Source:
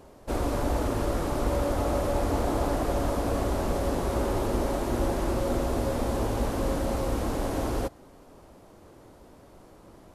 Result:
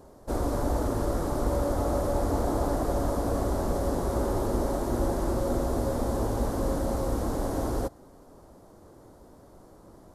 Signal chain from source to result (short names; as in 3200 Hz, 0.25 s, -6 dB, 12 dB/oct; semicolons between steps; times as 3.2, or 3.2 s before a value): bell 2600 Hz -12 dB 0.92 oct